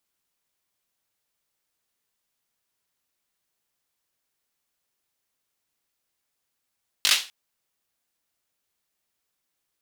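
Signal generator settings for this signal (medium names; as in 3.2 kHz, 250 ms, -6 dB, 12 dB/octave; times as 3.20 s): hand clap length 0.25 s, bursts 4, apart 20 ms, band 3.3 kHz, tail 0.31 s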